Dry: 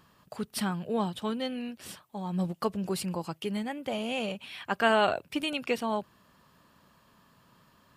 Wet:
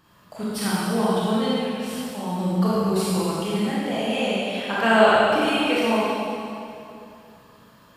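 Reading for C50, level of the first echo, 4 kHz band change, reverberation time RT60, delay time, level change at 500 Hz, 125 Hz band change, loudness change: -5.0 dB, none, +8.5 dB, 2.7 s, none, +10.0 dB, +9.5 dB, +9.0 dB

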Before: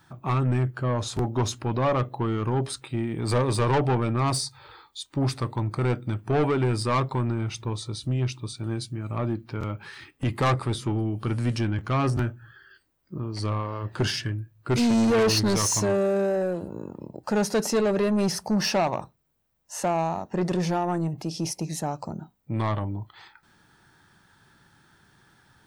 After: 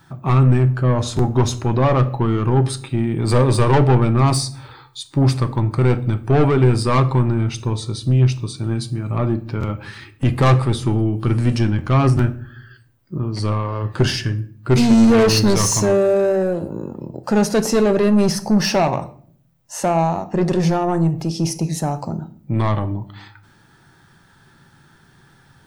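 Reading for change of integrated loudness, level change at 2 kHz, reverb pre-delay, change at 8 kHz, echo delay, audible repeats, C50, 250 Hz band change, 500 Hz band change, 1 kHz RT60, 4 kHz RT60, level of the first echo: +8.5 dB, +5.5 dB, 5 ms, +5.5 dB, none, none, 16.5 dB, +8.5 dB, +7.5 dB, 0.45 s, 0.40 s, none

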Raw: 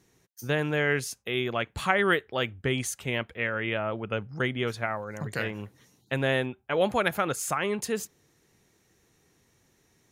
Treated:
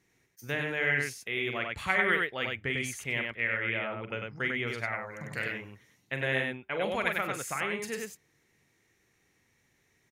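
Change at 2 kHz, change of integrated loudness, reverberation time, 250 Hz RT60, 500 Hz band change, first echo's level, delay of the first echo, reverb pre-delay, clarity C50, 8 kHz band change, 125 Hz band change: +0.5 dB, -2.5 dB, none, none, -6.5 dB, -9.5 dB, 43 ms, none, none, -6.0 dB, -6.5 dB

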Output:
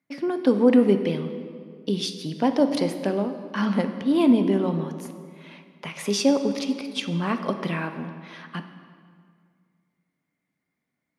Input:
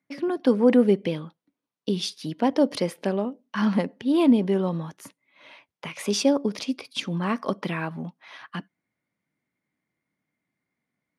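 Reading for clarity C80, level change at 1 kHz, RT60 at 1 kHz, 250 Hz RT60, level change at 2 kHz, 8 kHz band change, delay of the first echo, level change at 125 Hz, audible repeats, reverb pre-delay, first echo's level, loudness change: 10.5 dB, +1.0 dB, 1.9 s, 2.4 s, +0.5 dB, +0.5 dB, none, +1.0 dB, none, 4 ms, none, +1.0 dB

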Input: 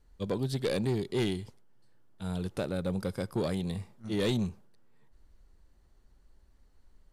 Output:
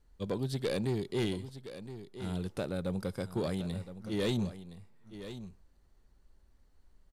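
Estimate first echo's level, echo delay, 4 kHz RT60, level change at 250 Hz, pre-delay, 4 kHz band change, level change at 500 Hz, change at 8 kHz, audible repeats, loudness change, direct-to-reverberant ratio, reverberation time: -12.5 dB, 1.017 s, none, -2.0 dB, none, -2.5 dB, -2.0 dB, -2.5 dB, 1, -3.0 dB, none, none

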